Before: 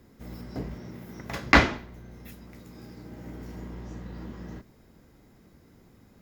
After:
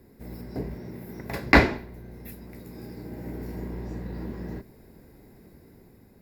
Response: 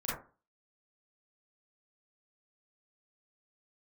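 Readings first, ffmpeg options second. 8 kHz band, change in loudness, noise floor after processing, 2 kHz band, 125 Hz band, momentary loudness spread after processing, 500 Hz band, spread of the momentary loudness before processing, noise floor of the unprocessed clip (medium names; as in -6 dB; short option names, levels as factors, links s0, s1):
-4.0 dB, 0.0 dB, -54 dBFS, +0.5 dB, +2.5 dB, 24 LU, +4.0 dB, 26 LU, -58 dBFS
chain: -af "equalizer=f=400:t=o:w=0.33:g=5,equalizer=f=1250:t=o:w=0.33:g=-9,equalizer=f=3150:t=o:w=0.33:g=-11,equalizer=f=6300:t=o:w=0.33:g=-11,equalizer=f=12500:t=o:w=0.33:g=7,dynaudnorm=f=220:g=7:m=1.5,volume=1.12"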